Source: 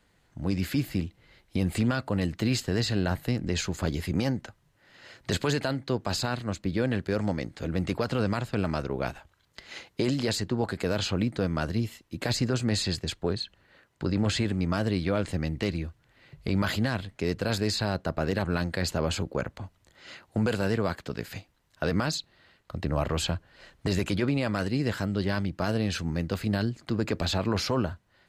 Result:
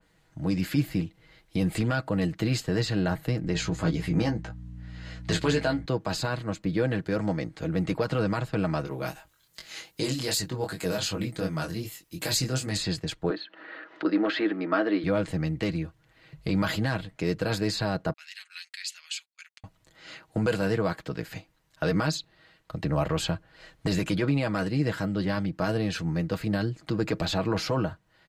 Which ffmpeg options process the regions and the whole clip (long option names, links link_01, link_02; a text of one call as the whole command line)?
ffmpeg -i in.wav -filter_complex "[0:a]asettb=1/sr,asplit=3[link_01][link_02][link_03];[link_01]atrim=end=3.534[link_04];[link_02]atrim=start=3.53:end=5.86,asetpts=PTS-STARTPTS,afade=type=in:duration=0.004:curve=qsin,afade=type=out:start_time=2.326:duration=0.004:curve=qsin,lowpass=9400,aeval=exprs='val(0)+0.00891*(sin(2*PI*60*n/s)+sin(2*PI*2*60*n/s)/2+sin(2*PI*3*60*n/s)/3+sin(2*PI*4*60*n/s)/4+sin(2*PI*5*60*n/s)/5)':channel_layout=same,asplit=2[link_05][link_06];[link_06]adelay=18,volume=-5dB[link_07];[link_05][link_07]amix=inputs=2:normalize=0,atrim=end_sample=102753[link_08];[link_03]atrim=start=5.856[link_09];[link_04][link_08]acrossfade=duration=0.004:curve1=hsin:curve2=qsin[link_10];[link_10][link_09]acrossfade=duration=0.004:curve1=qsin:curve2=hsin,asettb=1/sr,asplit=3[link_11][link_12][link_13];[link_11]atrim=end=8.854[link_14];[link_12]atrim=start=8.85:end=12.77,asetpts=PTS-STARTPTS,afade=type=in:duration=0.004:curve=qsin,afade=type=out:start_time=3.916:duration=0.004:curve=qsin,aemphasis=mode=production:type=75fm,flanger=delay=19.5:depth=4.5:speed=2.6[link_15];[link_13]atrim=start=12.766[link_16];[link_14][link_15]acrossfade=duration=0.004:curve1=hsin:curve2=qsin[link_17];[link_17][link_16]acrossfade=duration=0.004:curve1=qsin:curve2=hsin,asettb=1/sr,asplit=3[link_18][link_19][link_20];[link_18]atrim=end=13.304[link_21];[link_19]atrim=start=13.3:end=15.04,asetpts=PTS-STARTPTS,afade=type=in:duration=0.004:curve=qsin,afade=type=out:start_time=1.736:duration=0.004:curve=qsin,acompressor=mode=upward:threshold=-35dB:ratio=2.5:attack=3.2:release=140:knee=2.83:detection=peak,highpass=frequency=270:width=0.5412,highpass=frequency=270:width=1.3066,equalizer=frequency=310:width_type=q:width=4:gain=8,equalizer=frequency=640:width_type=q:width=4:gain=4,equalizer=frequency=1300:width_type=q:width=4:gain=7,equalizer=frequency=1800:width_type=q:width=4:gain=6,lowpass=frequency=4000:width=0.5412,lowpass=frequency=4000:width=1.3066[link_22];[link_20]atrim=start=15.036[link_23];[link_21][link_22]acrossfade=duration=0.004:curve1=hsin:curve2=qsin[link_24];[link_24][link_23]acrossfade=duration=0.004:curve1=qsin:curve2=hsin,asettb=1/sr,asplit=3[link_25][link_26][link_27];[link_25]atrim=end=18.134[link_28];[link_26]atrim=start=18.13:end=19.64,asetpts=PTS-STARTPTS,afade=type=in:duration=0.004:curve=qsin,afade=type=out:start_time=1.506:duration=0.004:curve=qsin,asuperpass=centerf=5500:order=8:qfactor=0.58,agate=range=-29dB:threshold=-57dB:ratio=16:release=100:detection=peak[link_29];[link_27]atrim=start=19.636[link_30];[link_28][link_29]acrossfade=duration=0.004:curve1=hsin:curve2=qsin[link_31];[link_31][link_30]acrossfade=duration=0.004:curve1=qsin:curve2=hsin,aecho=1:1:6.3:0.54,adynamicequalizer=threshold=0.00447:dfrequency=2500:dqfactor=0.7:tfrequency=2500:tqfactor=0.7:attack=5:release=100:ratio=0.375:range=2:mode=cutabove:tftype=highshelf" out.wav